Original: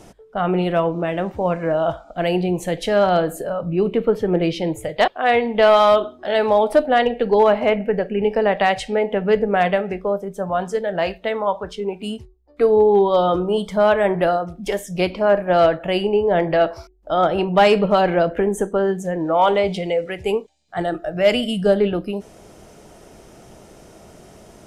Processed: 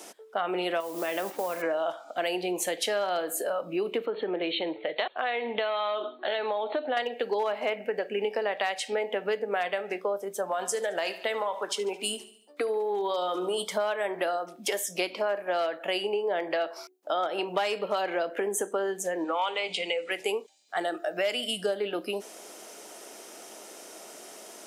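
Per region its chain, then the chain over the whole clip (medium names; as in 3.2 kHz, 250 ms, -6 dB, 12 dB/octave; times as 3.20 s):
0.80–1.62 s: compression, threshold -21 dBFS + modulation noise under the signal 25 dB
4.06–6.97 s: brick-wall FIR low-pass 4.4 kHz + compression 2.5:1, threshold -21 dBFS
10.43–13.64 s: dynamic bell 9.5 kHz, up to +8 dB, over -51 dBFS, Q 0.71 + compression, threshold -18 dBFS + feedback delay 72 ms, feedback 53%, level -17 dB
19.24–20.11 s: cabinet simulation 180–8600 Hz, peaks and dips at 370 Hz -8 dB, 650 Hz -10 dB, 1.7 kHz -4 dB, 2.6 kHz +7 dB, 5.7 kHz -8 dB + hum notches 50/100/150/200/250/300 Hz
whole clip: high-pass 260 Hz 24 dB/octave; tilt EQ +2.5 dB/octave; compression 6:1, threshold -26 dBFS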